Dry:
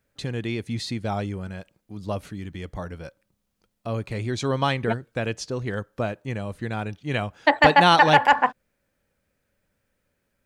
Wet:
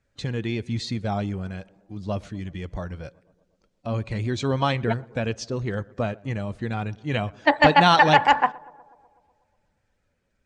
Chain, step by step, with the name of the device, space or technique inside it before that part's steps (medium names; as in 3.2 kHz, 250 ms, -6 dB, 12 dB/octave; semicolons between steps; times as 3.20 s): bass shelf 100 Hz +6 dB; tape echo 122 ms, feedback 74%, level -22.5 dB, low-pass 1.5 kHz; clip after many re-uploads (low-pass 7.8 kHz 24 dB/octave; coarse spectral quantiser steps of 15 dB)